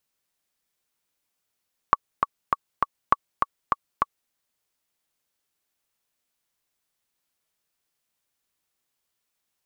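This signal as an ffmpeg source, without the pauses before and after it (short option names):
-f lavfi -i "aevalsrc='pow(10,(-2.5-4.5*gte(mod(t,4*60/201),60/201))/20)*sin(2*PI*1130*mod(t,60/201))*exp(-6.91*mod(t,60/201)/0.03)':d=2.38:s=44100"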